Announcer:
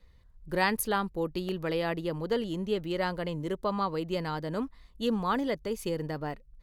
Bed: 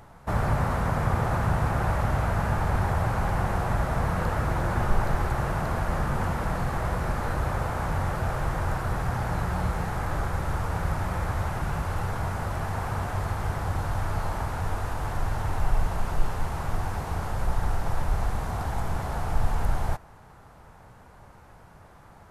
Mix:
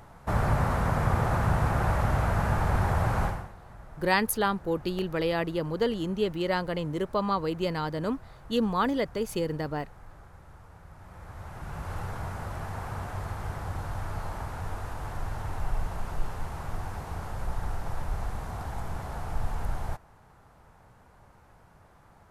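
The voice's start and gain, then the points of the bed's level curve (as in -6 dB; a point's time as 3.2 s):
3.50 s, +2.5 dB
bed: 3.25 s -0.5 dB
3.54 s -22.5 dB
10.89 s -22.5 dB
11.92 s -6 dB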